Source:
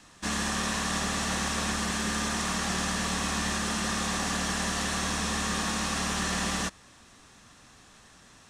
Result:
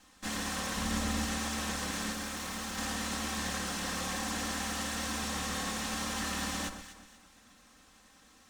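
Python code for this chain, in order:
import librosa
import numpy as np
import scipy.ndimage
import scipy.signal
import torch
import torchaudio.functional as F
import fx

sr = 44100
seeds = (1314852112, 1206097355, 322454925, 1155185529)

p1 = fx.lower_of_two(x, sr, delay_ms=3.8)
p2 = fx.low_shelf(p1, sr, hz=220.0, db=10.0, at=(0.76, 1.26))
p3 = fx.clip_hard(p2, sr, threshold_db=-32.0, at=(2.12, 2.78))
p4 = p3 + fx.echo_alternate(p3, sr, ms=121, hz=1500.0, feedback_pct=57, wet_db=-7.5, dry=0)
y = p4 * librosa.db_to_amplitude(-4.5)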